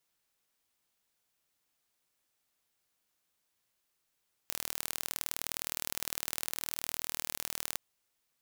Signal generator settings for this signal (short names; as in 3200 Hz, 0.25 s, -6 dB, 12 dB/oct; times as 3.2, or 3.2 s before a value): pulse train 39.3/s, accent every 2, -6 dBFS 3.28 s